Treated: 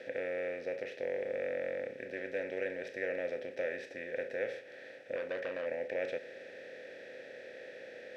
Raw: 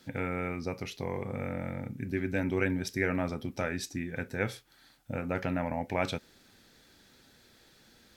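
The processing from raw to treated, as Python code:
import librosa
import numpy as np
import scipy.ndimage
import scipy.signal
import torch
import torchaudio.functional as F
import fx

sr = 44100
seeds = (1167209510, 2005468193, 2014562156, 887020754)

y = fx.bin_compress(x, sr, power=0.4)
y = fx.vowel_filter(y, sr, vowel='e')
y = fx.transformer_sat(y, sr, knee_hz=1100.0, at=(5.16, 5.66))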